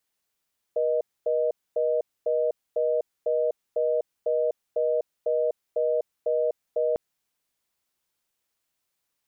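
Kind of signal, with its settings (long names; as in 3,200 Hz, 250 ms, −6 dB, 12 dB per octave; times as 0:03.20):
call progress tone reorder tone, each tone −24 dBFS 6.20 s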